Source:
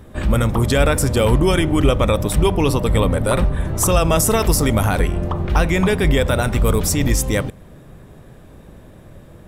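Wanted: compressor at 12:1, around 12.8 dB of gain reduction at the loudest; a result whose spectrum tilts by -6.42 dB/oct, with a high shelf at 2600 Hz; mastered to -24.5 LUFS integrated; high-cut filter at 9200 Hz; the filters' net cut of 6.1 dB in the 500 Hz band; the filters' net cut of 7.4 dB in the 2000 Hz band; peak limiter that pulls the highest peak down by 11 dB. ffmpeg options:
-af "lowpass=9.2k,equalizer=f=500:t=o:g=-7,equalizer=f=2k:t=o:g=-5.5,highshelf=f=2.6k:g=-9,acompressor=threshold=-24dB:ratio=12,volume=12dB,alimiter=limit=-15dB:level=0:latency=1"

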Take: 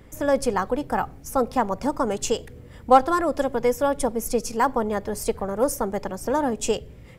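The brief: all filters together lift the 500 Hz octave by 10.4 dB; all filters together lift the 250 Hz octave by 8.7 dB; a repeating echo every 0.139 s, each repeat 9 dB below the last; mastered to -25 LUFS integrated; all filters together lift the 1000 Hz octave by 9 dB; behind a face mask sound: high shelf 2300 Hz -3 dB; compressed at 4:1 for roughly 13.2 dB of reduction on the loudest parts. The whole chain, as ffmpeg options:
-af "equalizer=f=250:t=o:g=7.5,equalizer=f=500:t=o:g=8,equalizer=f=1k:t=o:g=8.5,acompressor=threshold=-15dB:ratio=4,highshelf=f=2.3k:g=-3,aecho=1:1:139|278|417|556:0.355|0.124|0.0435|0.0152,volume=-4.5dB"

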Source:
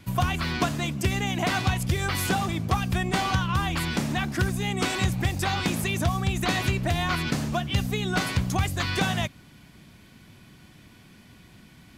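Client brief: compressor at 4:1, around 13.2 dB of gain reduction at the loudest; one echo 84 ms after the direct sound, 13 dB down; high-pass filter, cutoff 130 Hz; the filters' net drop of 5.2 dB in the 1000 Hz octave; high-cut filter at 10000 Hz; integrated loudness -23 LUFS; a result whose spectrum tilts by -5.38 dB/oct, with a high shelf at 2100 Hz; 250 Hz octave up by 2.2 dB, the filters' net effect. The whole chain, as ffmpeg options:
-af "highpass=130,lowpass=10k,equalizer=f=250:t=o:g=4.5,equalizer=f=1k:t=o:g=-6,highshelf=f=2.1k:g=-8.5,acompressor=threshold=-38dB:ratio=4,aecho=1:1:84:0.224,volume=16.5dB"

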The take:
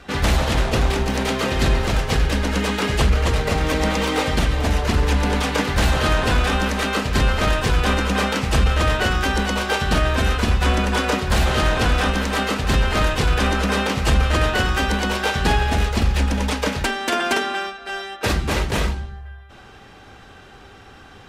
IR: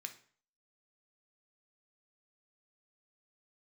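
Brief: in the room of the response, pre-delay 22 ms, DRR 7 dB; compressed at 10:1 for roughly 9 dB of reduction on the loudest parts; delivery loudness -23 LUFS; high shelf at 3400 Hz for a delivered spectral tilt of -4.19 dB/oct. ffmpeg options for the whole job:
-filter_complex "[0:a]highshelf=f=3.4k:g=-6.5,acompressor=threshold=-22dB:ratio=10,asplit=2[a][b];[1:a]atrim=start_sample=2205,adelay=22[c];[b][c]afir=irnorm=-1:irlink=0,volume=-4dB[d];[a][d]amix=inputs=2:normalize=0,volume=4dB"

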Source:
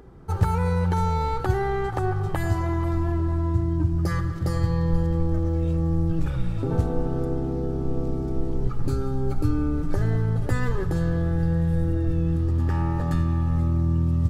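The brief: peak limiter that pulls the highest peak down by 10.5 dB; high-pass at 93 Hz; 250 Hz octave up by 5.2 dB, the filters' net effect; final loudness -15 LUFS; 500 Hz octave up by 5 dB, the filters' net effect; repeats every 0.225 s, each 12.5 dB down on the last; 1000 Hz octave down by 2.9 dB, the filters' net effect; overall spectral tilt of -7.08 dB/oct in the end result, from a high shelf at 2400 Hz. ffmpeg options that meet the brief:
-af "highpass=93,equalizer=f=250:t=o:g=7.5,equalizer=f=500:t=o:g=4.5,equalizer=f=1k:t=o:g=-4.5,highshelf=f=2.4k:g=-7.5,alimiter=limit=-20dB:level=0:latency=1,aecho=1:1:225|450|675:0.237|0.0569|0.0137,volume=13dB"

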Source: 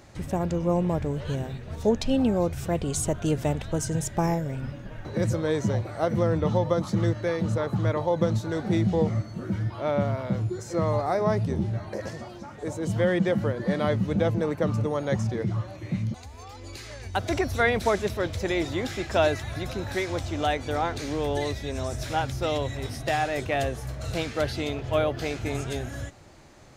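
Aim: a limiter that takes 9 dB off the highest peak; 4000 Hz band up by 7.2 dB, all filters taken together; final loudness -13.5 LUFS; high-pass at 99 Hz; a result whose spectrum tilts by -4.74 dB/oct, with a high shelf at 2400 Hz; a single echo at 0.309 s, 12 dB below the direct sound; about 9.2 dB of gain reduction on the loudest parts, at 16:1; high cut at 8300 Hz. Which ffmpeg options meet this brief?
-af "highpass=99,lowpass=8.3k,highshelf=f=2.4k:g=7,equalizer=f=4k:t=o:g=3,acompressor=threshold=-26dB:ratio=16,alimiter=limit=-22.5dB:level=0:latency=1,aecho=1:1:309:0.251,volume=19.5dB"

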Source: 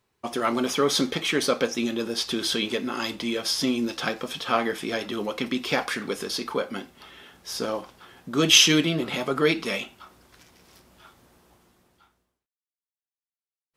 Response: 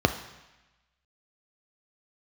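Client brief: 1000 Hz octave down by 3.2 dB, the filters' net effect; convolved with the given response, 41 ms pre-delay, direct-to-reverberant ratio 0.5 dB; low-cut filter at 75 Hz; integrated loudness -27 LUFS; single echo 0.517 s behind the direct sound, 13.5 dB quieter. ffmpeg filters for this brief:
-filter_complex "[0:a]highpass=75,equalizer=f=1k:t=o:g=-4.5,aecho=1:1:517:0.211,asplit=2[a][b];[1:a]atrim=start_sample=2205,adelay=41[c];[b][c]afir=irnorm=-1:irlink=0,volume=-15.5dB[d];[a][d]amix=inputs=2:normalize=0,volume=-5.5dB"

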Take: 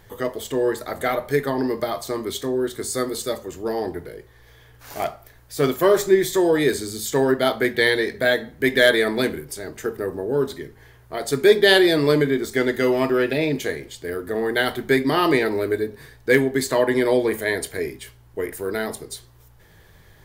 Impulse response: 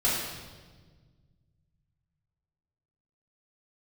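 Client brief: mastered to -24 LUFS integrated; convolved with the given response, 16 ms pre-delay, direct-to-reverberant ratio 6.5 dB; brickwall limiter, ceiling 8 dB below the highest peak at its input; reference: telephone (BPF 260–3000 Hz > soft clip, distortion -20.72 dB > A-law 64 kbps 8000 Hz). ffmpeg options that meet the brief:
-filter_complex "[0:a]alimiter=limit=-9.5dB:level=0:latency=1,asplit=2[a][b];[1:a]atrim=start_sample=2205,adelay=16[c];[b][c]afir=irnorm=-1:irlink=0,volume=-18dB[d];[a][d]amix=inputs=2:normalize=0,highpass=260,lowpass=3k,asoftclip=threshold=-11.5dB" -ar 8000 -c:a pcm_alaw

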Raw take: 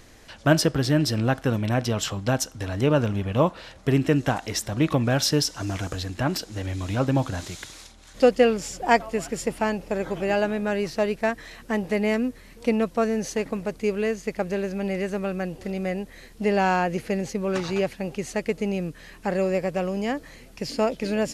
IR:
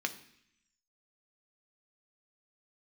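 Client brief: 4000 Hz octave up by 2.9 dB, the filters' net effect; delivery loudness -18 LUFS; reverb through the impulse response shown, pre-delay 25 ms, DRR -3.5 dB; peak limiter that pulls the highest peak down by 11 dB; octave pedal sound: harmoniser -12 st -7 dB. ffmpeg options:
-filter_complex "[0:a]equalizer=f=4k:t=o:g=4,alimiter=limit=-15dB:level=0:latency=1,asplit=2[a][b];[1:a]atrim=start_sample=2205,adelay=25[c];[b][c]afir=irnorm=-1:irlink=0,volume=-0.5dB[d];[a][d]amix=inputs=2:normalize=0,asplit=2[e][f];[f]asetrate=22050,aresample=44100,atempo=2,volume=-7dB[g];[e][g]amix=inputs=2:normalize=0,volume=4.5dB"

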